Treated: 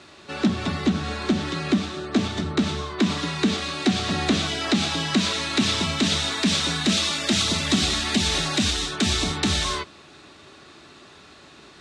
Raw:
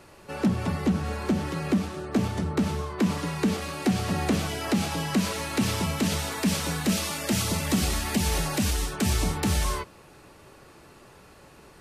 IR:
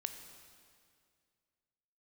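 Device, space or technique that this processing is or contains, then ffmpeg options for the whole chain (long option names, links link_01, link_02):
car door speaker: -af "highpass=100,equalizer=frequency=120:width_type=q:width=4:gain=-9,equalizer=frequency=180:width_type=q:width=4:gain=-5,equalizer=frequency=500:width_type=q:width=4:gain=-10,equalizer=frequency=890:width_type=q:width=4:gain=-6,equalizer=frequency=3700:width_type=q:width=4:gain=10,lowpass=frequency=7700:width=0.5412,lowpass=frequency=7700:width=1.3066,volume=5.5dB"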